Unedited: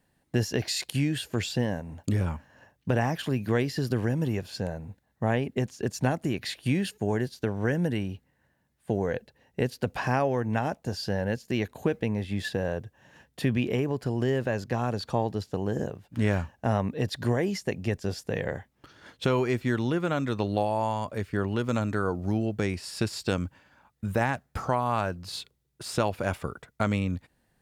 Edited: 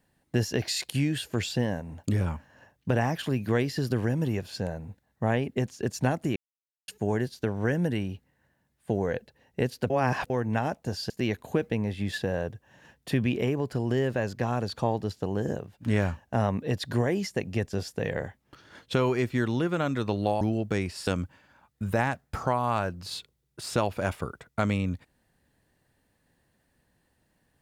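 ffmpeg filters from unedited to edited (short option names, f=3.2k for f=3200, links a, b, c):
-filter_complex "[0:a]asplit=8[a][b][c][d][e][f][g][h];[a]atrim=end=6.36,asetpts=PTS-STARTPTS,afade=t=out:st=6.356:d=0.004:c=hsin[i];[b]atrim=start=6.36:end=6.88,asetpts=PTS-STARTPTS,volume=0[j];[c]atrim=start=6.88:end=9.902,asetpts=PTS-STARTPTS,afade=t=in:d=0.004:c=hsin[k];[d]atrim=start=9.898:end=10.302,asetpts=PTS-STARTPTS,areverse[l];[e]atrim=start=10.298:end=11.102[m];[f]atrim=start=11.408:end=20.722[n];[g]atrim=start=22.288:end=22.952[o];[h]atrim=start=23.288[p];[i][j][k]concat=n=3:v=0:a=1[q];[q][l]acrossfade=d=0.004:c1=hsin:c2=hsin[r];[r][m]acrossfade=d=0.004:c1=hsin:c2=hsin[s];[s][n]acrossfade=d=0.004:c1=hsin:c2=hsin[t];[t][o]acrossfade=d=0.004:c1=hsin:c2=hsin[u];[u][p]acrossfade=d=0.004:c1=hsin:c2=hsin"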